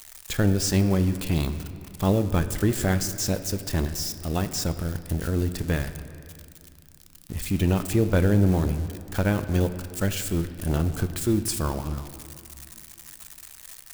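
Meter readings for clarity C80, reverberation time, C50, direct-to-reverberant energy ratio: 12.0 dB, 2.4 s, 11.0 dB, 9.5 dB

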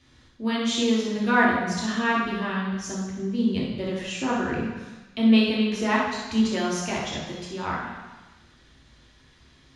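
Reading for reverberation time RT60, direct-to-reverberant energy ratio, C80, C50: 1.2 s, -6.0 dB, 3.0 dB, 0.5 dB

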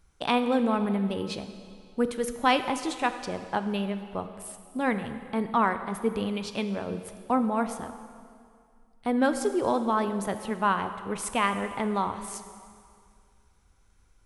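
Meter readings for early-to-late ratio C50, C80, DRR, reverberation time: 10.0 dB, 11.0 dB, 9.0 dB, 2.2 s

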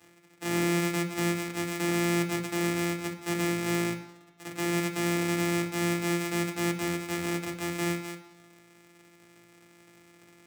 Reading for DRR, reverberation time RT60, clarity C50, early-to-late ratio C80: 2.5 dB, 1.1 s, 10.5 dB, 13.0 dB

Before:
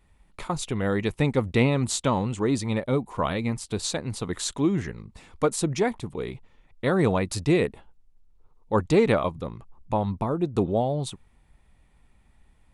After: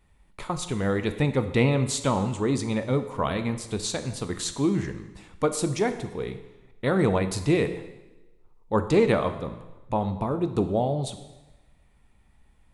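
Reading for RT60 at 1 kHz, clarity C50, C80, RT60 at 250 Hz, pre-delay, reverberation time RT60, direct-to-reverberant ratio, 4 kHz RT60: 1.1 s, 11.0 dB, 13.0 dB, 1.1 s, 5 ms, 1.1 s, 9.0 dB, 1.0 s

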